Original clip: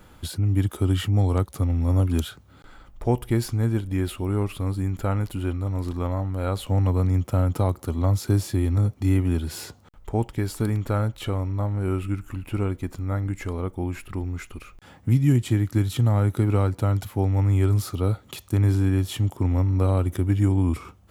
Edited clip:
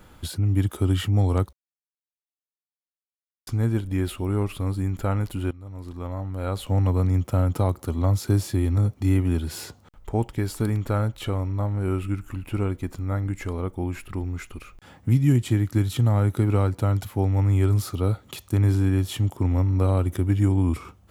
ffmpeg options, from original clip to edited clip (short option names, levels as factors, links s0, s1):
-filter_complex "[0:a]asplit=4[s0][s1][s2][s3];[s0]atrim=end=1.53,asetpts=PTS-STARTPTS,afade=t=out:st=1.526:d=0.004:c=hsin[s4];[s1]atrim=start=1.53:end=3.47,asetpts=PTS-STARTPTS,volume=0[s5];[s2]atrim=start=3.47:end=5.51,asetpts=PTS-STARTPTS,afade=t=in:d=0.004:c=hsin,afade=t=out:st=2.036:d=0.004:c=hsin:silence=0.133352[s6];[s3]atrim=start=5.51,asetpts=PTS-STARTPTS,afade=t=in:d=1.26:silence=0.133352[s7];[s4][s5][s6][s7]concat=n=4:v=0:a=1"